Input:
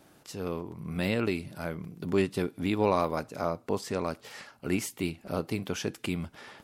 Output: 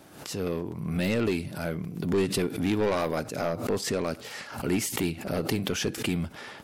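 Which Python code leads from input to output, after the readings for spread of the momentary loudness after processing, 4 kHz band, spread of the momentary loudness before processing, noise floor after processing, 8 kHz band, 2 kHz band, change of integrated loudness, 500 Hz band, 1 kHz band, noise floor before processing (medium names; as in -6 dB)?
7 LU, +6.0 dB, 10 LU, -46 dBFS, +7.5 dB, +3.0 dB, +2.5 dB, +2.0 dB, -1.5 dB, -60 dBFS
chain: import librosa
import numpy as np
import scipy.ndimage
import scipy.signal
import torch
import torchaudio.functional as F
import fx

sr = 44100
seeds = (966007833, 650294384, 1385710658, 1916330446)

y = scipy.signal.sosfilt(scipy.signal.butter(2, 42.0, 'highpass', fs=sr, output='sos'), x)
y = 10.0 ** (-25.0 / 20.0) * np.tanh(y / 10.0 ** (-25.0 / 20.0))
y = fx.dynamic_eq(y, sr, hz=1000.0, q=2.0, threshold_db=-52.0, ratio=4.0, max_db=-5)
y = fx.pre_swell(y, sr, db_per_s=82.0)
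y = y * librosa.db_to_amplitude(6.0)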